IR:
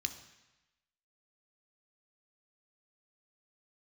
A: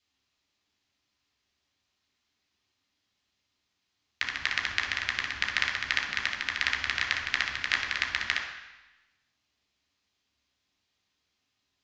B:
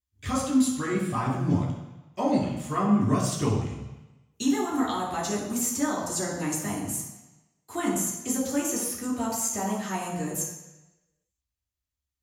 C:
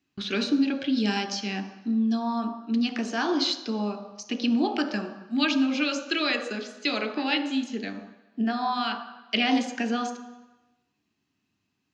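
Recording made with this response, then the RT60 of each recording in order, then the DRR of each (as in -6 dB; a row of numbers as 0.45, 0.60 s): C; 1.0, 1.0, 1.0 s; -0.5, -5.5, 7.0 dB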